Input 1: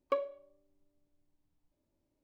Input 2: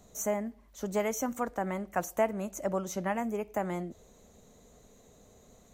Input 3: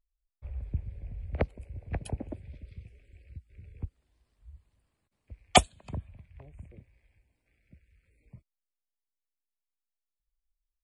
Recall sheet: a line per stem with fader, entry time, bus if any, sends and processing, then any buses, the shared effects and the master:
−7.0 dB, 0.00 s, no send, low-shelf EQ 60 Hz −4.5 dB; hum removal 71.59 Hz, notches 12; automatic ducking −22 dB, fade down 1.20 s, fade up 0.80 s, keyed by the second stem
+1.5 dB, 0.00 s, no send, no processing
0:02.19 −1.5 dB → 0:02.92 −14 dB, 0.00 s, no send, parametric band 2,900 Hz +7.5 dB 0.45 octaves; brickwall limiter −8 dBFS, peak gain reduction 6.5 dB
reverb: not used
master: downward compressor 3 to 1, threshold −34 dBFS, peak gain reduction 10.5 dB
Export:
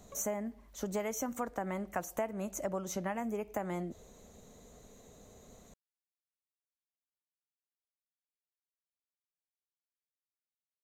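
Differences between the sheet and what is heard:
stem 1 −7.0 dB → −18.5 dB
stem 3: muted

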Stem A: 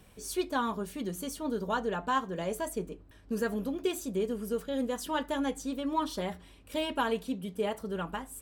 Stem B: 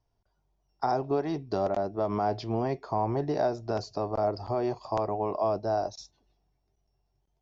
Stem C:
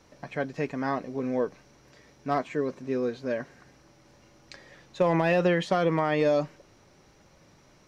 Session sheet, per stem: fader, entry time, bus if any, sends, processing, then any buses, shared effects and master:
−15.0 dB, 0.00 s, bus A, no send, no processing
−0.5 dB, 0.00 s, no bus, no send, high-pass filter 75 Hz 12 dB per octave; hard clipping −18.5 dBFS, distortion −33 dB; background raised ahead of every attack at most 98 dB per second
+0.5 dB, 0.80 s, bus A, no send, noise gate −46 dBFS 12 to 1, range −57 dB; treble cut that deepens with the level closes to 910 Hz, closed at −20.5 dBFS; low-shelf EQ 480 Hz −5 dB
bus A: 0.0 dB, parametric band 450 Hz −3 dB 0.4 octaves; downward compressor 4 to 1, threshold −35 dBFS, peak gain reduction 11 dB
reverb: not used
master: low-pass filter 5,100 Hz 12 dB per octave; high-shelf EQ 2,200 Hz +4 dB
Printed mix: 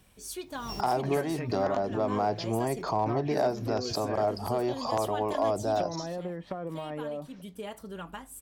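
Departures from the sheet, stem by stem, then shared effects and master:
stem A −15.0 dB → −4.5 dB
stem C: missing low-shelf EQ 480 Hz −5 dB
master: missing low-pass filter 5,100 Hz 12 dB per octave

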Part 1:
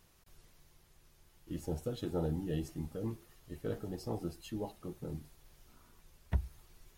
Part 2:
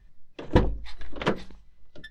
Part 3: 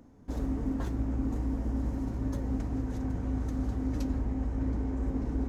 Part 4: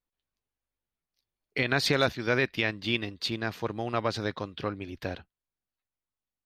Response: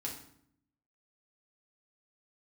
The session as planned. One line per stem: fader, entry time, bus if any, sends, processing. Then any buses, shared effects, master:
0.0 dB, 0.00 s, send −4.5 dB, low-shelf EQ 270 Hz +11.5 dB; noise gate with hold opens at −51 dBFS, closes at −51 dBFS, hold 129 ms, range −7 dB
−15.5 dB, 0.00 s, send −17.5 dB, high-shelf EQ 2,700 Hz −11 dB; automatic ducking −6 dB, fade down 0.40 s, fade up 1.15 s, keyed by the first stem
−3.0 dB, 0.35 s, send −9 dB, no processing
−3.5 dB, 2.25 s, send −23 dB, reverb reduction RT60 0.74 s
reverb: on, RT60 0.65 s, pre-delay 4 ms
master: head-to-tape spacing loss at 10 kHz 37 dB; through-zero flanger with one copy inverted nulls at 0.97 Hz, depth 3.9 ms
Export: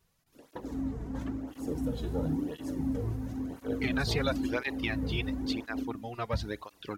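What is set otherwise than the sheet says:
stem 1: missing low-shelf EQ 270 Hz +11.5 dB
master: missing head-to-tape spacing loss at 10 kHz 37 dB

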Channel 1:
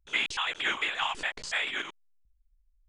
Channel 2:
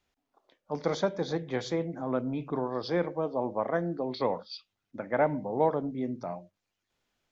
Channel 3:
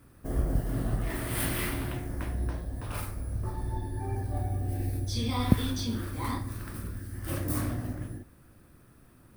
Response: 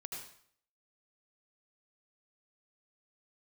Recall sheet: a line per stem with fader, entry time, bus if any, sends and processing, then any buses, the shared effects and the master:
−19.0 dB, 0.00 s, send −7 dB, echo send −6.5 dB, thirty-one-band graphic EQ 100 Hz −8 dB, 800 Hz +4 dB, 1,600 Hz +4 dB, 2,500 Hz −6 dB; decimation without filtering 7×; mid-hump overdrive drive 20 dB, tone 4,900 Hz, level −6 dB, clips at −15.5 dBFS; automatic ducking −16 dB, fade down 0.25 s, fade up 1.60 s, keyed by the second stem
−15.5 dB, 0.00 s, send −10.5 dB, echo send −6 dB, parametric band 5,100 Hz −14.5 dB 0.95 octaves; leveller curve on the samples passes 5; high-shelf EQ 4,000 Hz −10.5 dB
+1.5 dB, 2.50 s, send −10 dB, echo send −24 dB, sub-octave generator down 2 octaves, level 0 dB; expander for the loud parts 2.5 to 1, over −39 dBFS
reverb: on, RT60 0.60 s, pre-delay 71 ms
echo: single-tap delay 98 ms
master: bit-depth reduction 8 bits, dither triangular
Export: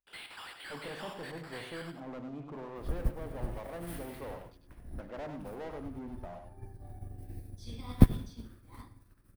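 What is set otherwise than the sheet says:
stem 1 −19.0 dB → −25.0 dB
stem 2 −15.5 dB → −26.0 dB
master: missing bit-depth reduction 8 bits, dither triangular

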